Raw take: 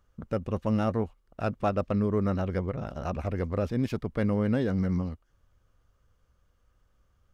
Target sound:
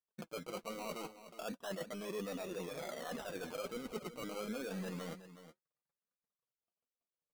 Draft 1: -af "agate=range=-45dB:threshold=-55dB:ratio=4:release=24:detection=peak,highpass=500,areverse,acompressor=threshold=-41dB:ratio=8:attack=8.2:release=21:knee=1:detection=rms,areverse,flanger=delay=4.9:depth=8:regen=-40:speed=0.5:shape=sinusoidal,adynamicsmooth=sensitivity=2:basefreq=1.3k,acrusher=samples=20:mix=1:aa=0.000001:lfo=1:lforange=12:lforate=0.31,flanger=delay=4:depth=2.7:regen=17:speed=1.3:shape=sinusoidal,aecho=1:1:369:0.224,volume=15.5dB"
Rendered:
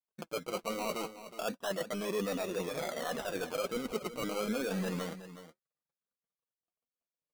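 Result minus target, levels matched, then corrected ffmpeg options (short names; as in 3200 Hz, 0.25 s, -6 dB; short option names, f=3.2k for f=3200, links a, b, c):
compressor: peak gain reduction -7.5 dB
-af "agate=range=-45dB:threshold=-55dB:ratio=4:release=24:detection=peak,highpass=500,areverse,acompressor=threshold=-49.5dB:ratio=8:attack=8.2:release=21:knee=1:detection=rms,areverse,flanger=delay=4.9:depth=8:regen=-40:speed=0.5:shape=sinusoidal,adynamicsmooth=sensitivity=2:basefreq=1.3k,acrusher=samples=20:mix=1:aa=0.000001:lfo=1:lforange=12:lforate=0.31,flanger=delay=4:depth=2.7:regen=17:speed=1.3:shape=sinusoidal,aecho=1:1:369:0.224,volume=15.5dB"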